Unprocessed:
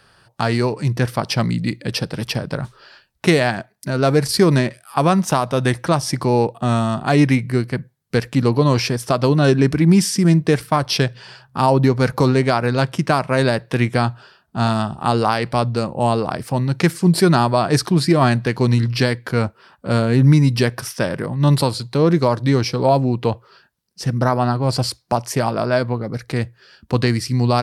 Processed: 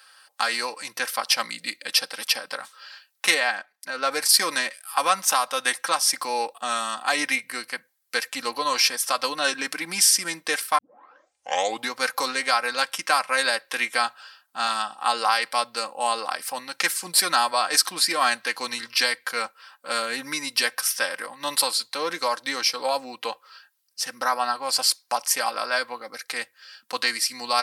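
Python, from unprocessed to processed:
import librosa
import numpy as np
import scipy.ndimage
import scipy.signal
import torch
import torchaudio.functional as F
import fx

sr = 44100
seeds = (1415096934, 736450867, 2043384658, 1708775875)

y = fx.lowpass(x, sr, hz=2700.0, slope=6, at=(3.34, 4.12))
y = fx.high_shelf(y, sr, hz=8200.0, db=-5.5, at=(14.57, 15.35))
y = fx.edit(y, sr, fx.tape_start(start_s=10.78, length_s=1.15), tone=tone)
y = scipy.signal.sosfilt(scipy.signal.butter(2, 1100.0, 'highpass', fs=sr, output='sos'), y)
y = fx.high_shelf(y, sr, hz=7500.0, db=9.5)
y = y + 0.64 * np.pad(y, (int(3.8 * sr / 1000.0), 0))[:len(y)]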